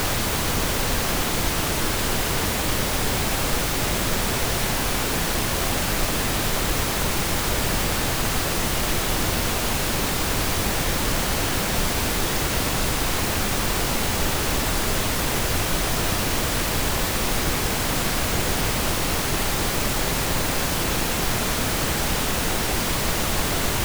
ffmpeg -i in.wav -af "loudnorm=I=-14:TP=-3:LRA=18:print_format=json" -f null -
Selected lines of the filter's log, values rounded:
"input_i" : "-22.6",
"input_tp" : "-8.4",
"input_lra" : "0.1",
"input_thresh" : "-32.6",